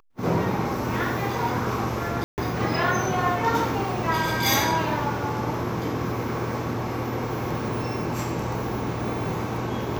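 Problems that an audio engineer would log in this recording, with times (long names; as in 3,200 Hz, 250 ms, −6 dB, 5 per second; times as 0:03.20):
0:02.24–0:02.38: drop-out 139 ms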